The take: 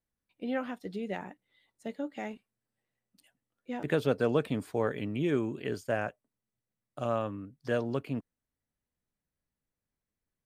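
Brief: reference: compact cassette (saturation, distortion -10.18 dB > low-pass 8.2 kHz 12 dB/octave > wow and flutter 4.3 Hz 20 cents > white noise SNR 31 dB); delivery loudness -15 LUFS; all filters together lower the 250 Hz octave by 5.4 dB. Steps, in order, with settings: peaking EQ 250 Hz -7 dB; saturation -28.5 dBFS; low-pass 8.2 kHz 12 dB/octave; wow and flutter 4.3 Hz 20 cents; white noise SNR 31 dB; trim +24 dB

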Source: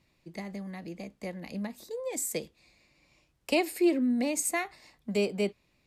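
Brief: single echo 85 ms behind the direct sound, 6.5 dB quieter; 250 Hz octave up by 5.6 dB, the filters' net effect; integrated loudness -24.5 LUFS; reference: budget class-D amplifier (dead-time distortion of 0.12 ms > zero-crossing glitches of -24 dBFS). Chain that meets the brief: peaking EQ 250 Hz +7 dB; delay 85 ms -6.5 dB; dead-time distortion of 0.12 ms; zero-crossing glitches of -24 dBFS; trim +3.5 dB

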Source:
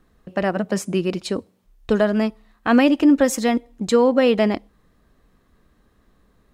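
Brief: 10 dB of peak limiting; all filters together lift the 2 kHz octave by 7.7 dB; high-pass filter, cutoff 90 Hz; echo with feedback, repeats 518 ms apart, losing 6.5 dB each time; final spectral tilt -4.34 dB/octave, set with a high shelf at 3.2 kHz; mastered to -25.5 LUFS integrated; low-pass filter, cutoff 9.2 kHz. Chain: high-pass 90 Hz; low-pass 9.2 kHz; peaking EQ 2 kHz +8.5 dB; treble shelf 3.2 kHz +3.5 dB; peak limiter -12 dBFS; feedback delay 518 ms, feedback 47%, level -6.5 dB; trim -3.5 dB

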